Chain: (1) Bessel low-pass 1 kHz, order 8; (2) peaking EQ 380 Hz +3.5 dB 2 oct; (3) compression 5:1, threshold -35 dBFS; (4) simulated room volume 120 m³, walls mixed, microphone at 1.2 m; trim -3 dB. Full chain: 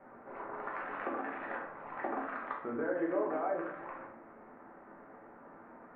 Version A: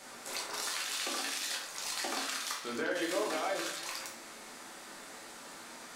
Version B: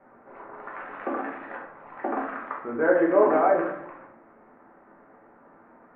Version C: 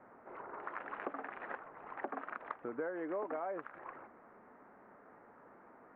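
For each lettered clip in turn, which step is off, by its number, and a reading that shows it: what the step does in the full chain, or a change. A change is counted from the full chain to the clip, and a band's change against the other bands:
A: 1, 2 kHz band +7.0 dB; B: 3, mean gain reduction 3.5 dB; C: 4, echo-to-direct 3.0 dB to none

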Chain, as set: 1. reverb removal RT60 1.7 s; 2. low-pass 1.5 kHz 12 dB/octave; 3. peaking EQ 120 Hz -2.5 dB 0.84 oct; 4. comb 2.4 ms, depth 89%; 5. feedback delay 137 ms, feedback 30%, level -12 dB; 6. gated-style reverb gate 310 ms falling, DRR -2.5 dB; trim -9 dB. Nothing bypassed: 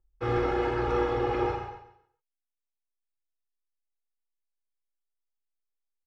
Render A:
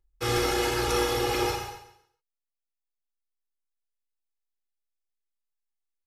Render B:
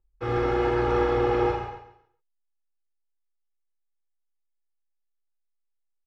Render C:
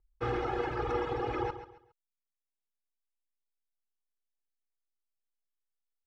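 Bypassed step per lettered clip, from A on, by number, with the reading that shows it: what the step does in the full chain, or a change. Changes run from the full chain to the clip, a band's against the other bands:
2, 4 kHz band +15.0 dB; 1, loudness change +3.5 LU; 6, loudness change -5.5 LU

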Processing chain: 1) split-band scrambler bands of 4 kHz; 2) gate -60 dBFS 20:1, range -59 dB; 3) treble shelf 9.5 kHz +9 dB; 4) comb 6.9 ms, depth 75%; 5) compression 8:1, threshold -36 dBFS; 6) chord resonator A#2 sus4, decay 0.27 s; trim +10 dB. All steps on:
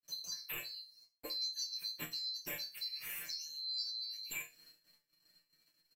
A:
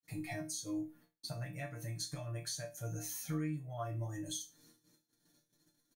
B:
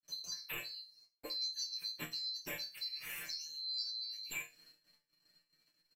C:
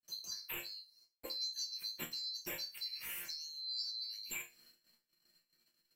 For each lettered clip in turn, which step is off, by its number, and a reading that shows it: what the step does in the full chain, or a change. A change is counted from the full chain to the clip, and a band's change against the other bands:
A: 1, 4 kHz band -21.0 dB; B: 3, 8 kHz band -2.5 dB; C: 4, 125 Hz band -2.0 dB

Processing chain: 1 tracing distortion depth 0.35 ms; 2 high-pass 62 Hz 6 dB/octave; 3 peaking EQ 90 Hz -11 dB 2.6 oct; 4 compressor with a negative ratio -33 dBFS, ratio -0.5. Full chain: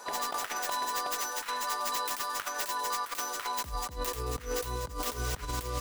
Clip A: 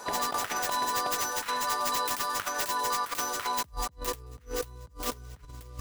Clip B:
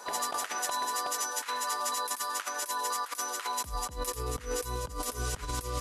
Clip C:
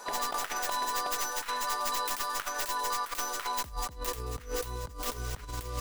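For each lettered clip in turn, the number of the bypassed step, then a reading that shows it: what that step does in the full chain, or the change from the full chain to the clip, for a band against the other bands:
3, 125 Hz band -8.0 dB; 1, 8 kHz band +3.5 dB; 2, 250 Hz band -2.0 dB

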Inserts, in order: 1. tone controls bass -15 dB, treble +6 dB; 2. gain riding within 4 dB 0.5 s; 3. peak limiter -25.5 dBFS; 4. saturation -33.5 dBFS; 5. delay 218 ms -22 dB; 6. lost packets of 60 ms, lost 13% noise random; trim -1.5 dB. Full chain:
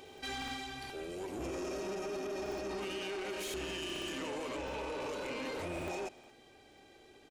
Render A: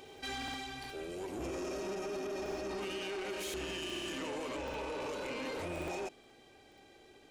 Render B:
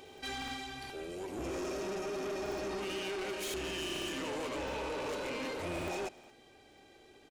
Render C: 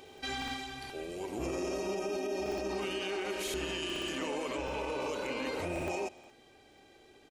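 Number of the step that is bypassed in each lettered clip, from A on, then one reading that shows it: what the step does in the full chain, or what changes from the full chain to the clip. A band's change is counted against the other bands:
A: 5, momentary loudness spread change -9 LU; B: 3, mean gain reduction 2.5 dB; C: 4, distortion -12 dB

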